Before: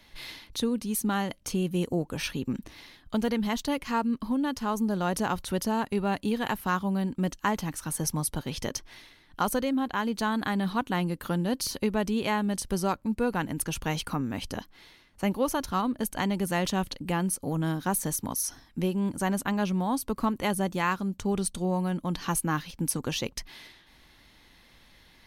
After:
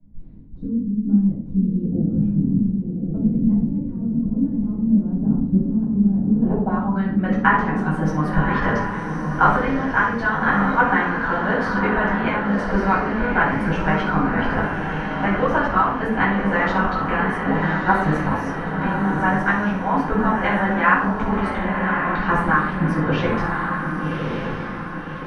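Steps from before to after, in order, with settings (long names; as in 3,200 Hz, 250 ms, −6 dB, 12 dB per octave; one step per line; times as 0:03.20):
harmonic and percussive parts rebalanced harmonic −11 dB
low-pass filter sweep 210 Hz → 1,700 Hz, 0:06.26–0:07.00
on a send: feedback delay with all-pass diffusion 1,139 ms, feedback 46%, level −4 dB
on the sum: rectangular room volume 780 cubic metres, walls furnished, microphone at 7.7 metres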